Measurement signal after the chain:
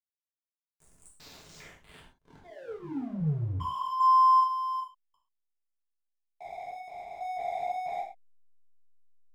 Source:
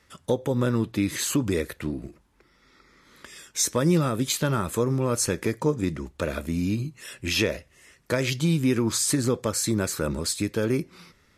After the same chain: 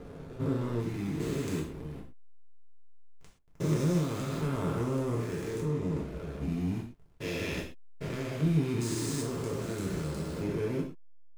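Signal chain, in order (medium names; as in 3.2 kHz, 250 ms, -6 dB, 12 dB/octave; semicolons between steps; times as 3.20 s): spectrogram pixelated in time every 400 ms; hysteresis with a dead band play -28.5 dBFS; gated-style reverb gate 150 ms falling, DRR -3.5 dB; trim -7.5 dB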